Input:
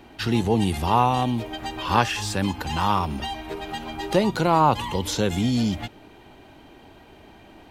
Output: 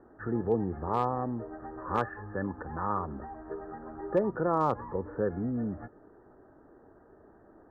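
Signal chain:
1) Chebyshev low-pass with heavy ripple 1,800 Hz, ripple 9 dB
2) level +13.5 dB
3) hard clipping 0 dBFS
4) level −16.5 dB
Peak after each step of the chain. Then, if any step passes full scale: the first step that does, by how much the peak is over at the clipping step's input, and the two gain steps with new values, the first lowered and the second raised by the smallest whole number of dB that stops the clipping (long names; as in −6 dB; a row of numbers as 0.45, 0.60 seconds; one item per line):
−9.0, +4.5, 0.0, −16.5 dBFS
step 2, 4.5 dB
step 2 +8.5 dB, step 4 −11.5 dB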